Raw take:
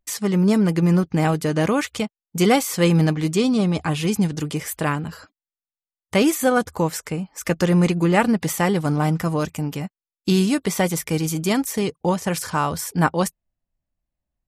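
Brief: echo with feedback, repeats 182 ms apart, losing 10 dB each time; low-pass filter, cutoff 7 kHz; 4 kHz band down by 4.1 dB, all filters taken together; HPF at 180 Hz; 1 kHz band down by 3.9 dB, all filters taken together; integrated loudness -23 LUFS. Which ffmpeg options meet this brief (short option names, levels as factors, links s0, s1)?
-af "highpass=180,lowpass=7000,equalizer=f=1000:t=o:g=-5,equalizer=f=4000:t=o:g=-5,aecho=1:1:182|364|546|728:0.316|0.101|0.0324|0.0104"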